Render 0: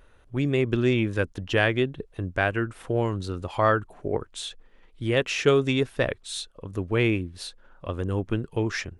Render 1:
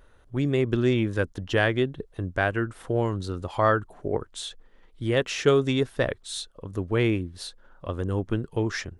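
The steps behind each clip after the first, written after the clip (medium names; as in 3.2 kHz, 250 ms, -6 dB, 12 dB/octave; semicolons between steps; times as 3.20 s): peaking EQ 2.5 kHz -5.5 dB 0.41 oct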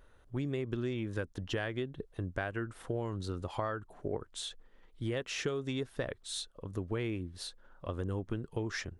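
compression 10:1, threshold -26 dBFS, peak gain reduction 12 dB; trim -5 dB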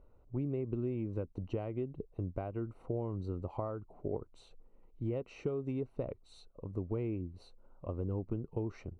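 boxcar filter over 26 samples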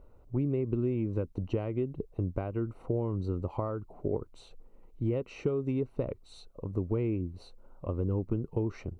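dynamic bell 710 Hz, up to -5 dB, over -54 dBFS, Q 2.9; trim +6 dB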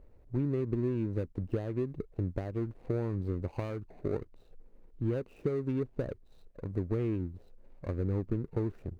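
median filter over 41 samples; trim -1 dB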